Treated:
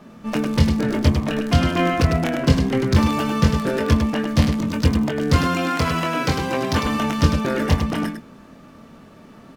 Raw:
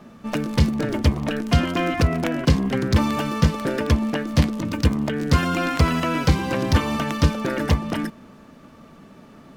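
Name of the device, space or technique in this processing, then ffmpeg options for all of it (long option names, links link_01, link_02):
slapback doubling: -filter_complex "[0:a]asplit=3[link_01][link_02][link_03];[link_02]adelay=23,volume=-5.5dB[link_04];[link_03]adelay=102,volume=-6dB[link_05];[link_01][link_04][link_05]amix=inputs=3:normalize=0,asettb=1/sr,asplit=3[link_06][link_07][link_08];[link_06]atrim=end=5.424[link_09];[link_07]atrim=start=5.42:end=6.86,asetpts=PTS-STARTPTS,afade=type=in:duration=0.004:curve=qsin,afade=type=out:start_time=1.436:duration=0.004:curve=qsin,highpass=frequency=190:poles=1[link_10];[link_08]atrim=start=6.856[link_11];[link_09][link_10]acrossfade=duration=0.004:curve1=hsin:curve2=qsin[link_12];[link_12][link_11]acrossfade=duration=0.004:curve1=qsin:curve2=hsin"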